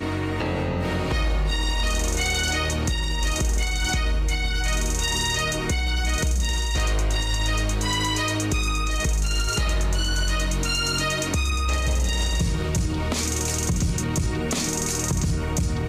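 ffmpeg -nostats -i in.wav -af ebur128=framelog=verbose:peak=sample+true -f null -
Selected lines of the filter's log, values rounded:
Integrated loudness:
  I:         -24.0 LUFS
  Threshold: -34.0 LUFS
Loudness range:
  LRA:         0.6 LU
  Threshold: -43.9 LUFS
  LRA low:   -24.3 LUFS
  LRA high:  -23.6 LUFS
Sample peak:
  Peak:      -15.4 dBFS
True peak:
  Peak:      -15.3 dBFS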